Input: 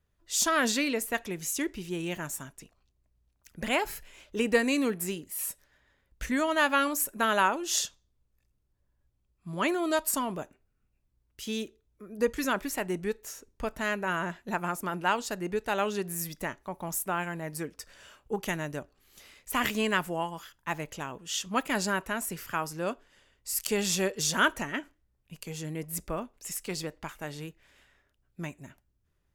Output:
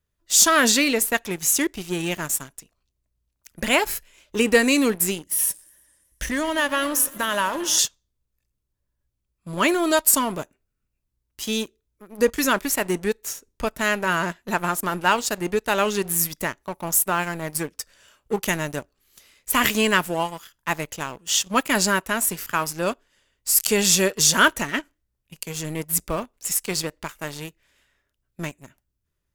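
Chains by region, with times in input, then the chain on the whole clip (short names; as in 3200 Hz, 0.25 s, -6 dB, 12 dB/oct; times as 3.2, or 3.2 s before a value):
5.2–7.79 ripple EQ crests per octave 1.2, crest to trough 7 dB + compressor 2:1, threshold -32 dBFS + warbling echo 0.114 s, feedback 72%, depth 192 cents, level -18.5 dB
whole clip: high shelf 4000 Hz +6.5 dB; notch 770 Hz, Q 12; sample leveller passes 2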